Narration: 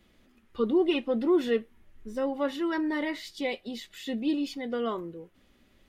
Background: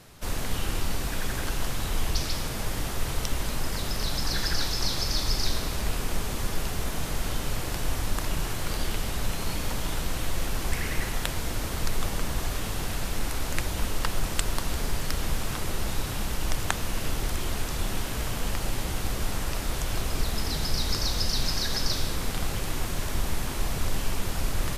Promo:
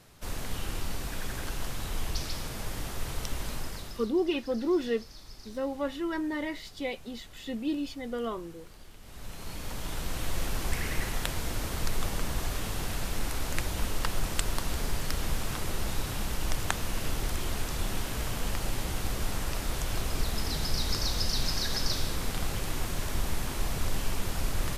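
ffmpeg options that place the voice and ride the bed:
-filter_complex "[0:a]adelay=3400,volume=-3dB[a];[1:a]volume=14dB,afade=t=out:st=3.53:d=0.59:silence=0.149624,afade=t=in:st=9:d=1.37:silence=0.105925[b];[a][b]amix=inputs=2:normalize=0"

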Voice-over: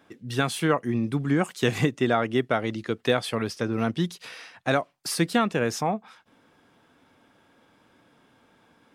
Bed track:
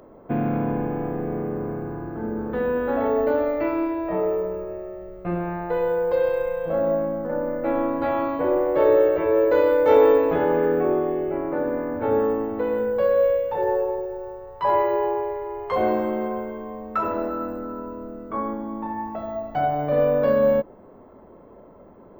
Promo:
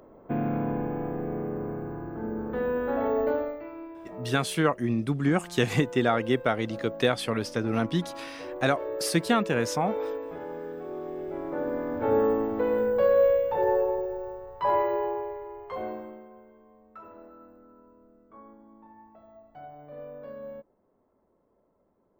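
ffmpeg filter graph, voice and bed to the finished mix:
-filter_complex "[0:a]adelay=3950,volume=-1dB[a];[1:a]volume=11dB,afade=t=out:st=3.29:d=0.33:silence=0.237137,afade=t=in:st=10.87:d=1.41:silence=0.16788,afade=t=out:st=14.11:d=2.14:silence=0.0891251[b];[a][b]amix=inputs=2:normalize=0"

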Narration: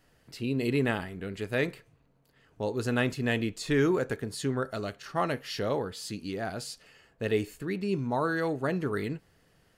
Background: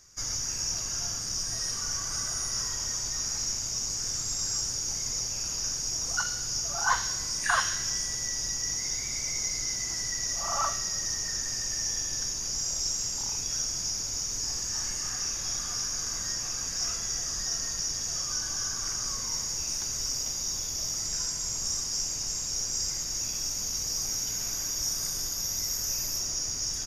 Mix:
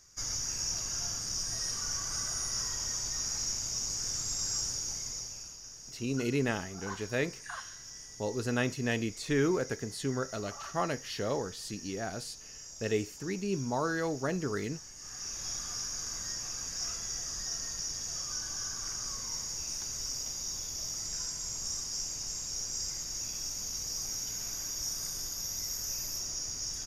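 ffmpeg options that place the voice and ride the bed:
-filter_complex "[0:a]adelay=5600,volume=-3dB[a];[1:a]volume=8dB,afade=t=out:st=4.67:d=0.92:silence=0.211349,afade=t=in:st=14.95:d=0.5:silence=0.281838[b];[a][b]amix=inputs=2:normalize=0"

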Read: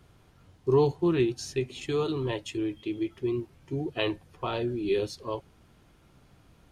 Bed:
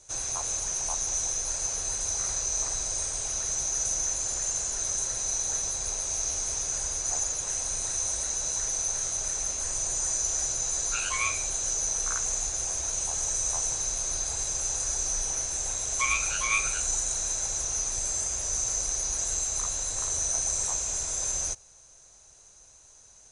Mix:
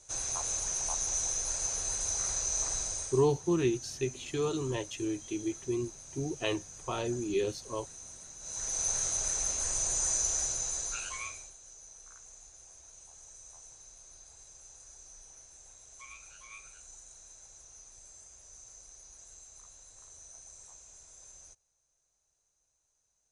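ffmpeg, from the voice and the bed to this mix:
-filter_complex "[0:a]adelay=2450,volume=-3.5dB[a];[1:a]volume=14dB,afade=t=out:st=2.79:d=0.49:silence=0.16788,afade=t=in:st=8.39:d=0.5:silence=0.141254,afade=t=out:st=10.17:d=1.38:silence=0.0794328[b];[a][b]amix=inputs=2:normalize=0"

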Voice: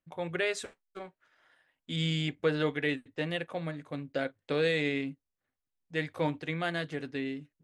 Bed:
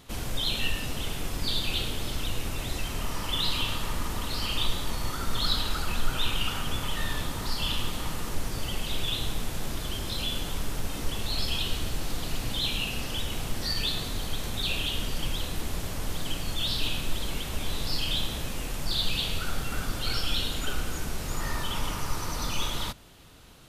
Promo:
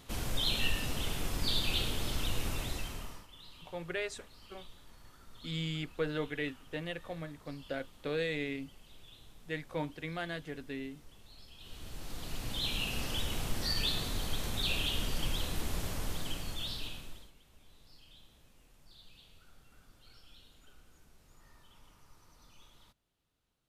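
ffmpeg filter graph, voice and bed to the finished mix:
-filter_complex "[0:a]adelay=3550,volume=-6dB[a];[1:a]volume=19.5dB,afade=t=out:st=2.51:d=0.76:silence=0.0707946,afade=t=in:st=11.57:d=1.47:silence=0.0749894,afade=t=out:st=15.88:d=1.44:silence=0.0473151[b];[a][b]amix=inputs=2:normalize=0"

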